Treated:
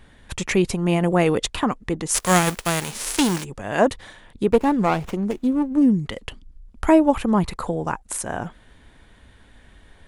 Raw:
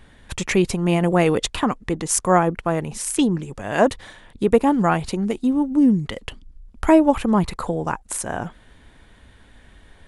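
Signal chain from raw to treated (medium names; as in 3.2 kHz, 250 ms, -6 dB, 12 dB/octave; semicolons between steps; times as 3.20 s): 2.14–3.43 s: formants flattened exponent 0.3; 4.52–5.82 s: sliding maximum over 9 samples; trim -1 dB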